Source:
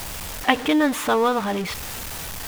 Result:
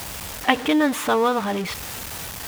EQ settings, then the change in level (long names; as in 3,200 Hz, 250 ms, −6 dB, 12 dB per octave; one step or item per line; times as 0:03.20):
high-pass filter 54 Hz
0.0 dB